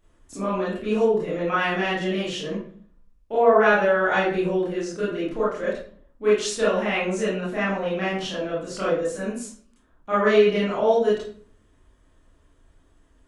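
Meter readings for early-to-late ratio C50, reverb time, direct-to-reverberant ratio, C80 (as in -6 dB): 1.0 dB, 0.50 s, -10.0 dB, 6.5 dB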